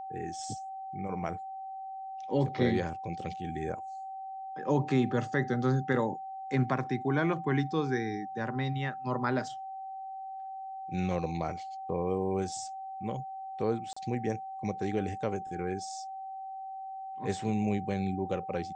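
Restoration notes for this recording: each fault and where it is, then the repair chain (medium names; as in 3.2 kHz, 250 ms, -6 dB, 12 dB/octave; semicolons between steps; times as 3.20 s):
whine 770 Hz -38 dBFS
13.93–13.96 s: dropout 35 ms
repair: band-stop 770 Hz, Q 30; interpolate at 13.93 s, 35 ms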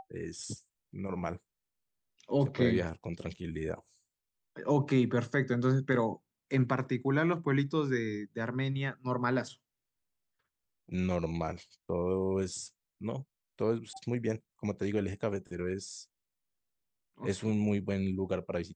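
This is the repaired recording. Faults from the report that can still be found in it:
nothing left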